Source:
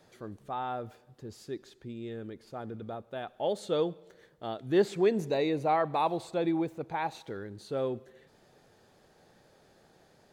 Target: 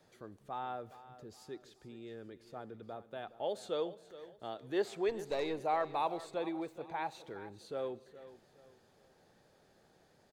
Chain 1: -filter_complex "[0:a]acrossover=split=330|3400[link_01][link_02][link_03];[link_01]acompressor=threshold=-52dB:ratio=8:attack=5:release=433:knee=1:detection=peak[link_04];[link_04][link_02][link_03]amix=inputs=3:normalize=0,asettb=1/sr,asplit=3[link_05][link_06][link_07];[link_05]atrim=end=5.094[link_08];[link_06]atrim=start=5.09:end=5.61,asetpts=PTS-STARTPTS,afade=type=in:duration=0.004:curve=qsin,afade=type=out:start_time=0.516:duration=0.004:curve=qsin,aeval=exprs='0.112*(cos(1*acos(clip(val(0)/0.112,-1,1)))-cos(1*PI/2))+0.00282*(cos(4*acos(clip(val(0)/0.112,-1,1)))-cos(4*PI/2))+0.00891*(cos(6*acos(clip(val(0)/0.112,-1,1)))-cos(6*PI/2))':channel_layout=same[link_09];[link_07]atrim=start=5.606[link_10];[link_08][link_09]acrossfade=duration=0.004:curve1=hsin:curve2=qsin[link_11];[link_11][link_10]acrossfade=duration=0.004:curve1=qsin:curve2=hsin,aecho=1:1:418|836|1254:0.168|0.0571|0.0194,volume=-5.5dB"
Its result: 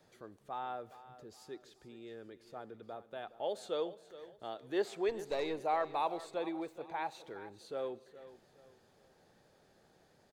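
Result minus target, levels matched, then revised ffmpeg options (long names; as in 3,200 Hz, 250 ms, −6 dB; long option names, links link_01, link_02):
downward compressor: peak gain reduction +5.5 dB
-filter_complex "[0:a]acrossover=split=330|3400[link_01][link_02][link_03];[link_01]acompressor=threshold=-45.5dB:ratio=8:attack=5:release=433:knee=1:detection=peak[link_04];[link_04][link_02][link_03]amix=inputs=3:normalize=0,asettb=1/sr,asplit=3[link_05][link_06][link_07];[link_05]atrim=end=5.094[link_08];[link_06]atrim=start=5.09:end=5.61,asetpts=PTS-STARTPTS,afade=type=in:duration=0.004:curve=qsin,afade=type=out:start_time=0.516:duration=0.004:curve=qsin,aeval=exprs='0.112*(cos(1*acos(clip(val(0)/0.112,-1,1)))-cos(1*PI/2))+0.00282*(cos(4*acos(clip(val(0)/0.112,-1,1)))-cos(4*PI/2))+0.00891*(cos(6*acos(clip(val(0)/0.112,-1,1)))-cos(6*PI/2))':channel_layout=same[link_09];[link_07]atrim=start=5.606[link_10];[link_08][link_09]acrossfade=duration=0.004:curve1=hsin:curve2=qsin[link_11];[link_11][link_10]acrossfade=duration=0.004:curve1=qsin:curve2=hsin,aecho=1:1:418|836|1254:0.168|0.0571|0.0194,volume=-5.5dB"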